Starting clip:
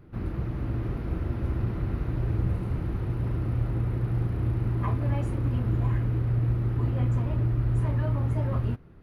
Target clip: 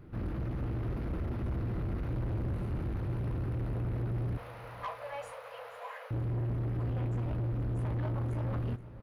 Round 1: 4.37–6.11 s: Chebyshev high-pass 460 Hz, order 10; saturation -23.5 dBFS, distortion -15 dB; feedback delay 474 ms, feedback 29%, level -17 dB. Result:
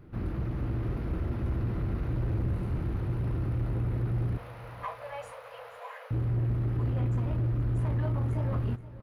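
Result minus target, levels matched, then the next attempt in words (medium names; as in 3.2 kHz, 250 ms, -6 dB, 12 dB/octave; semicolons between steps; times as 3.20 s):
saturation: distortion -6 dB
4.37–6.11 s: Chebyshev high-pass 460 Hz, order 10; saturation -30.5 dBFS, distortion -8 dB; feedback delay 474 ms, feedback 29%, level -17 dB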